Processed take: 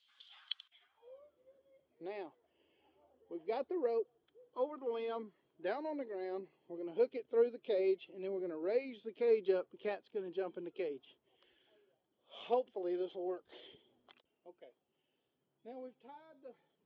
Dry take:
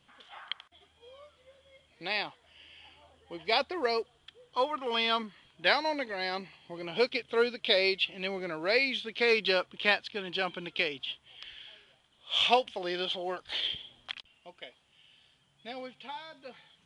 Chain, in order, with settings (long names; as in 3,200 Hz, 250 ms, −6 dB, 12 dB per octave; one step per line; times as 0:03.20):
spectral magnitudes quantised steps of 15 dB
band-pass filter sweep 4,000 Hz → 380 Hz, 0:00.62–0:01.21